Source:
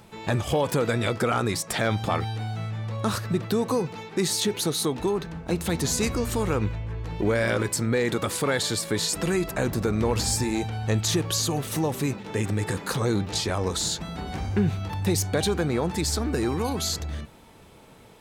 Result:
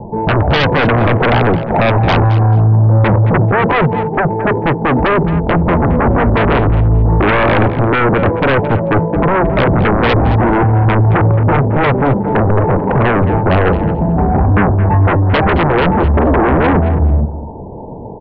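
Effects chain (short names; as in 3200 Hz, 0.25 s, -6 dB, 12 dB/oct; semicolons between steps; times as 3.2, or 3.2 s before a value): steep low-pass 970 Hz 96 dB/oct; in parallel at -3.5 dB: sine folder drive 16 dB, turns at -12 dBFS; on the sum: feedback echo 0.219 s, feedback 16%, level -13 dB; gain +6 dB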